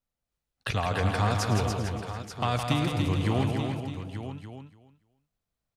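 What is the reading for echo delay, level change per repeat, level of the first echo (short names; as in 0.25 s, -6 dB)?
0.108 s, no steady repeat, -14.5 dB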